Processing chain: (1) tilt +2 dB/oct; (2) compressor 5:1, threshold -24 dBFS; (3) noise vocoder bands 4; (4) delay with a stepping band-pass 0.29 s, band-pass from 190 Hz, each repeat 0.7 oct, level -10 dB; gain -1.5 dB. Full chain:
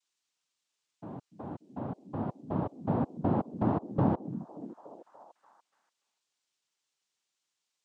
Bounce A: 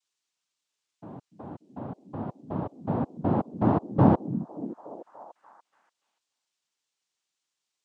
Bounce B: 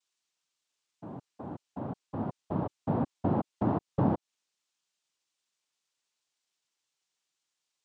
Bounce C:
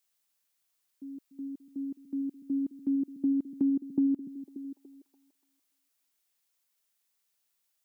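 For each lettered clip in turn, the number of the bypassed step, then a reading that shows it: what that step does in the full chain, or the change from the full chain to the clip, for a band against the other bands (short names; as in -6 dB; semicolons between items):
2, mean gain reduction 2.0 dB; 4, echo-to-direct -19.0 dB to none; 3, crest factor change -5.5 dB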